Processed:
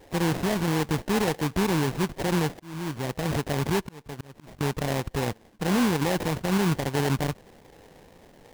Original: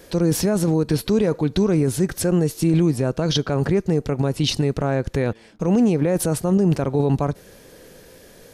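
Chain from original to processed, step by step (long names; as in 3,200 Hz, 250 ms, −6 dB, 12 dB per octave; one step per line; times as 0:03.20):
0:02.49–0:04.61: volume swells 652 ms
sample-rate reduction 1,300 Hz, jitter 20%
level −6 dB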